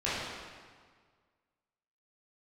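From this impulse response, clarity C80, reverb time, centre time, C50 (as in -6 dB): 0.5 dB, 1.7 s, 117 ms, -2.5 dB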